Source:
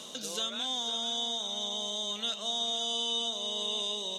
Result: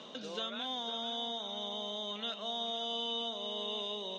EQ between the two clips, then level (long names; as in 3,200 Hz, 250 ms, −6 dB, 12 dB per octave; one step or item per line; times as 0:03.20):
band-pass filter 130–3,000 Hz
high-frequency loss of the air 58 metres
0.0 dB